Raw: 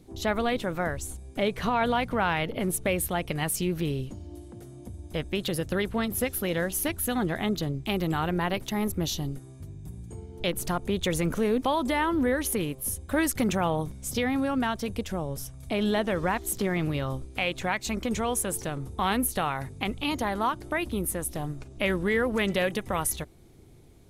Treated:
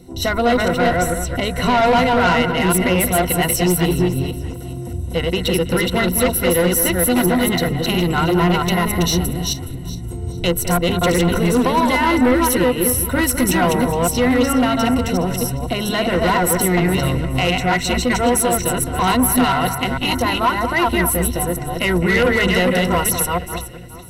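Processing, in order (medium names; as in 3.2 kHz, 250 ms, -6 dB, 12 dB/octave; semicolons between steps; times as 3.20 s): chunks repeated in reverse 227 ms, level -2 dB; rippled EQ curve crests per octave 2, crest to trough 15 dB; saturation -19 dBFS, distortion -12 dB; on a send: echo whose repeats swap between lows and highs 209 ms, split 2.4 kHz, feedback 54%, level -9 dB; on the sum: trim +8.5 dB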